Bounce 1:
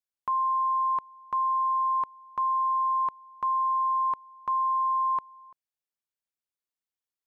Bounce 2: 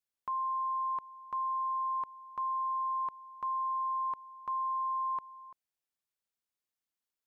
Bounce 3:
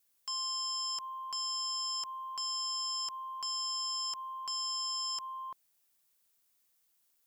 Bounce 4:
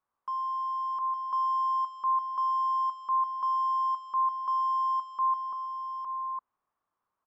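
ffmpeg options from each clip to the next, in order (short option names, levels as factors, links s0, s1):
-af "alimiter=level_in=2:limit=0.0631:level=0:latency=1,volume=0.501"
-af "aeval=exprs='0.0335*sin(PI/2*3.98*val(0)/0.0335)':c=same,crystalizer=i=1.5:c=0,volume=0.447"
-filter_complex "[0:a]lowpass=f=1100:t=q:w=4.9,asplit=2[s0][s1];[s1]aecho=0:1:126|860:0.15|0.596[s2];[s0][s2]amix=inputs=2:normalize=0,volume=0.891"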